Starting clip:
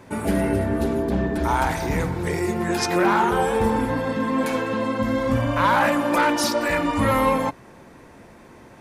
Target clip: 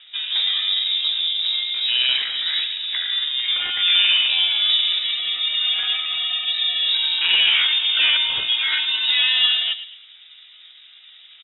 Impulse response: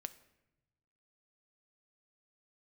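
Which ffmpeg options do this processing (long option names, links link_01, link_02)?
-filter_complex "[0:a]equalizer=frequency=150:width_type=o:width=0.4:gain=-15,adynamicsmooth=sensitivity=4:basefreq=2800,asplit=2[link_01][link_02];[link_02]adelay=85,lowpass=frequency=1900:poles=1,volume=-10.5dB,asplit=2[link_03][link_04];[link_04]adelay=85,lowpass=frequency=1900:poles=1,volume=0.42,asplit=2[link_05][link_06];[link_06]adelay=85,lowpass=frequency=1900:poles=1,volume=0.42,asplit=2[link_07][link_08];[link_08]adelay=85,lowpass=frequency=1900:poles=1,volume=0.42[link_09];[link_03][link_05][link_07][link_09]amix=inputs=4:normalize=0[link_10];[link_01][link_10]amix=inputs=2:normalize=0,atempo=0.77,lowpass=frequency=3300:width_type=q:width=0.5098,lowpass=frequency=3300:width_type=q:width=0.6013,lowpass=frequency=3300:width_type=q:width=0.9,lowpass=frequency=3300:width_type=q:width=2.563,afreqshift=-3900,volume=1.5dB"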